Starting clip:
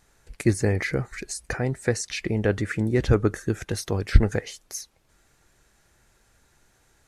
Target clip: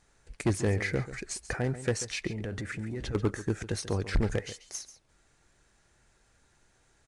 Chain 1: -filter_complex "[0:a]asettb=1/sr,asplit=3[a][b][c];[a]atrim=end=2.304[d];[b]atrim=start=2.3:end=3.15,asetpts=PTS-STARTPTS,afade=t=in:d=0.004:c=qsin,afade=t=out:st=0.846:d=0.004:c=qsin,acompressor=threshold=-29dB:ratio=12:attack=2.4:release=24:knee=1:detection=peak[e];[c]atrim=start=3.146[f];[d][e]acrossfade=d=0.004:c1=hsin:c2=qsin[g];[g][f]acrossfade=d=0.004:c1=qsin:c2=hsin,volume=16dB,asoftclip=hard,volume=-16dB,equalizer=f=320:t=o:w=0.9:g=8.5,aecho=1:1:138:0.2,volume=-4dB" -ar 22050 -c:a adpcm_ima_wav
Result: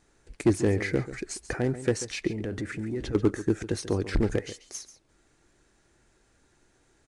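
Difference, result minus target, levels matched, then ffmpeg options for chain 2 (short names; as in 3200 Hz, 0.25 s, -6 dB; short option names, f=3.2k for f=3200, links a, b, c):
250 Hz band +2.5 dB
-filter_complex "[0:a]asettb=1/sr,asplit=3[a][b][c];[a]atrim=end=2.304[d];[b]atrim=start=2.3:end=3.15,asetpts=PTS-STARTPTS,afade=t=in:d=0.004:c=qsin,afade=t=out:st=0.846:d=0.004:c=qsin,acompressor=threshold=-29dB:ratio=12:attack=2.4:release=24:knee=1:detection=peak[e];[c]atrim=start=3.146[f];[d][e]acrossfade=d=0.004:c1=hsin:c2=qsin[g];[g][f]acrossfade=d=0.004:c1=qsin:c2=hsin,volume=16dB,asoftclip=hard,volume=-16dB,aecho=1:1:138:0.2,volume=-4dB" -ar 22050 -c:a adpcm_ima_wav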